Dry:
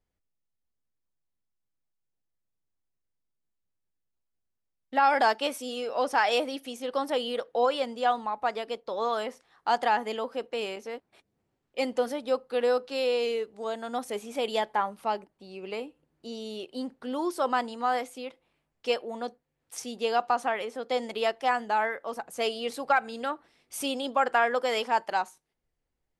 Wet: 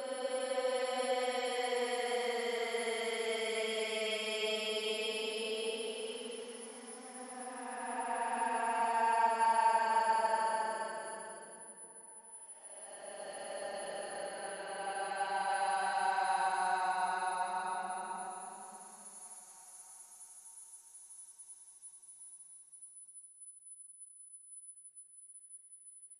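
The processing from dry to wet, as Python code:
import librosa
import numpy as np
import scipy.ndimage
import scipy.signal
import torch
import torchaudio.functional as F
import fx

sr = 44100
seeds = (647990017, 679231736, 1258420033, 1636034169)

y = x + 10.0 ** (-43.0 / 20.0) * np.sin(2.0 * np.pi * 10000.0 * np.arange(len(x)) / sr)
y = fx.paulstretch(y, sr, seeds[0], factor=30.0, window_s=0.1, from_s=24.63)
y = F.gain(torch.from_numpy(y), -8.5).numpy()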